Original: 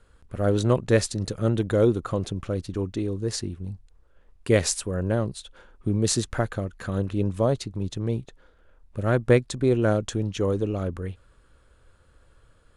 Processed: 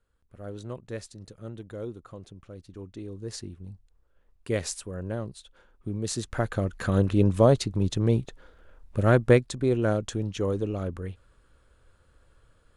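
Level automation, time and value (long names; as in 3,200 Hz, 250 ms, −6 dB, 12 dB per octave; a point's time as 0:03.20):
0:02.49 −16.5 dB
0:03.35 −8 dB
0:06.11 −8 dB
0:06.71 +4 dB
0:09.01 +4 dB
0:09.55 −3 dB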